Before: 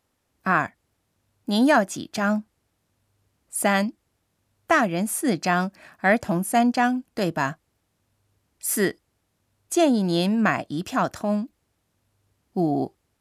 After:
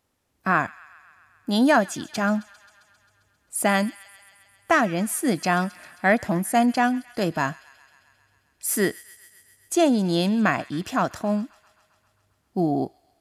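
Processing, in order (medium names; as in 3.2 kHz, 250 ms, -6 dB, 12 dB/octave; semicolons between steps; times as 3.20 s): feedback echo behind a high-pass 133 ms, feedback 71%, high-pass 1.7 kHz, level -18 dB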